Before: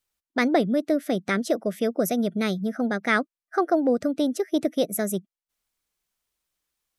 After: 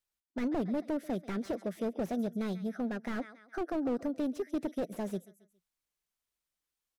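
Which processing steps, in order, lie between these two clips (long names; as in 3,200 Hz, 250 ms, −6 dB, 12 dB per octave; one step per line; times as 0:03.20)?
repeating echo 137 ms, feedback 40%, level −22 dB
slew-rate limiting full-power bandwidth 41 Hz
level −8.5 dB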